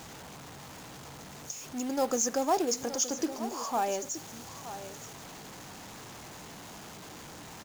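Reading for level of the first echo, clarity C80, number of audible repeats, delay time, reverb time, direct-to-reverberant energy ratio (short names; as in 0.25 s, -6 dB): -13.0 dB, none, 1, 0.921 s, none, none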